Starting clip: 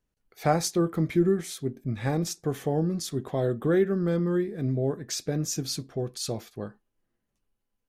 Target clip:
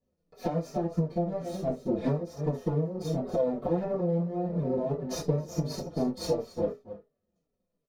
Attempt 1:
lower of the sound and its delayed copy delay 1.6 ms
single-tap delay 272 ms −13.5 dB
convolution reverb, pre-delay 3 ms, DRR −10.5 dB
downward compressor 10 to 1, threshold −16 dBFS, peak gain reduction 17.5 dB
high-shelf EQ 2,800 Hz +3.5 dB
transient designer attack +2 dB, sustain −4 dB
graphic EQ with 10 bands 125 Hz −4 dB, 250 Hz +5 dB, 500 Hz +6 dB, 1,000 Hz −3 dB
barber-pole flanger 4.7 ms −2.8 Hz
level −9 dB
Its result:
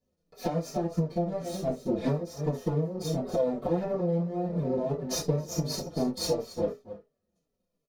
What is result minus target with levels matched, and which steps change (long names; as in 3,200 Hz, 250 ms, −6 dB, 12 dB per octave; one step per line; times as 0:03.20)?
4,000 Hz band +6.0 dB
change: high-shelf EQ 2,800 Hz −4.5 dB